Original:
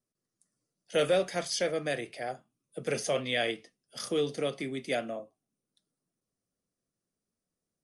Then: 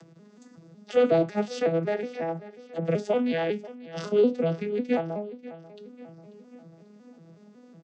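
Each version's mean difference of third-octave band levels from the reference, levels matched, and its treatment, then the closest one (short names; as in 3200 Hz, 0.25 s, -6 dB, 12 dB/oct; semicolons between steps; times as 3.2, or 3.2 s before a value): 9.5 dB: arpeggiated vocoder major triad, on E3, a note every 0.184 s; LPF 3700 Hz 6 dB/oct; upward compressor, threshold -35 dBFS; on a send: feedback echo 0.54 s, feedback 48%, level -18 dB; on the sum: gain +6.5 dB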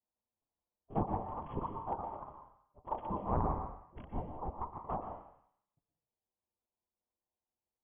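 14.5 dB: steep high-pass 2300 Hz 96 dB/oct; envelope flanger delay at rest 7.5 ms, full sweep at -28.5 dBFS; plate-style reverb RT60 0.97 s, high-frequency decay 0.6×, pre-delay 0.105 s, DRR 4.5 dB; inverted band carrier 3300 Hz; gain +9.5 dB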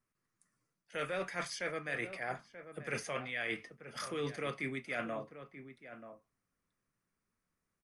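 5.0 dB: band shelf 1500 Hz +11.5 dB; reverse; compressor 6:1, threshold -33 dBFS, peak gain reduction 15 dB; reverse; low shelf 120 Hz +10.5 dB; outdoor echo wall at 160 m, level -11 dB; gain -2.5 dB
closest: third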